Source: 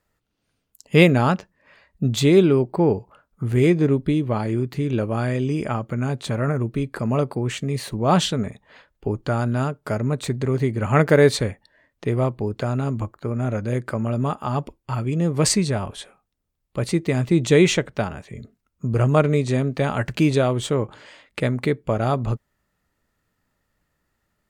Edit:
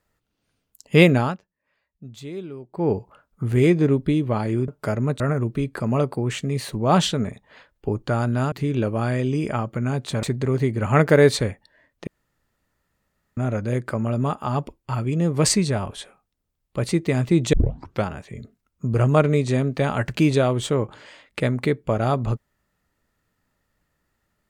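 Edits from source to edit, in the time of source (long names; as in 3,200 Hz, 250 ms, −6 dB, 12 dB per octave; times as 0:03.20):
0:01.15–0:02.95: duck −19 dB, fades 0.24 s
0:04.68–0:06.39: swap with 0:09.71–0:10.23
0:12.07–0:13.37: fill with room tone
0:17.53: tape start 0.51 s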